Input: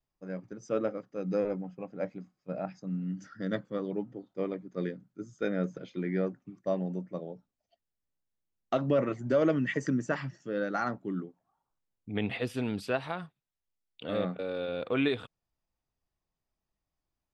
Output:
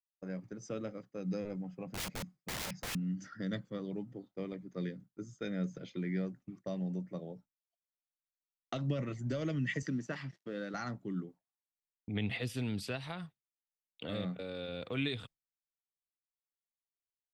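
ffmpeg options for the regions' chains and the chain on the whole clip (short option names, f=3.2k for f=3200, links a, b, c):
-filter_complex "[0:a]asettb=1/sr,asplit=3[a][b][c];[a]atrim=end=1.864[d];[b]atrim=start=1.86:end=2.95,asetpts=PTS-STARTPTS,afade=t=in:d=0.004:c=qsin,afade=t=out:st=1.086:d=0.004:c=qsin,equalizer=f=150:w=1.4:g=12,aeval=exprs='(mod(50.1*val(0)+1,2)-1)/50.1':c=same[e];[c]atrim=start=2.946[f];[d][e]acrossfade=d=0.004:c1=hsin:c2=qsin[g];[g][f]acrossfade=d=0.004:c1=qsin:c2=hsin,asettb=1/sr,asplit=3[h][i][j];[h]atrim=end=9.824[k];[i]atrim=start=9.82:end=10.74,asetpts=PTS-STARTPTS,afade=t=in:d=0.004:c=qsin,afade=t=out:st=0.916:d=0.004:c=qsin,aeval=exprs='sgn(val(0))*max(abs(val(0))-0.00126,0)':c=same,highpass=170,lowpass=5k[l];[j]atrim=start=10.736[m];[k][l]acrossfade=d=0.004:c1=hsin:c2=qsin[n];[n][m]acrossfade=d=0.004:c1=qsin:c2=hsin,acrossover=split=180|3000[o][p][q];[p]acompressor=threshold=-46dB:ratio=3[r];[o][r][q]amix=inputs=3:normalize=0,agate=range=-33dB:threshold=-50dB:ratio=3:detection=peak,equalizer=f=2k:w=5.5:g=4,volume=2dB"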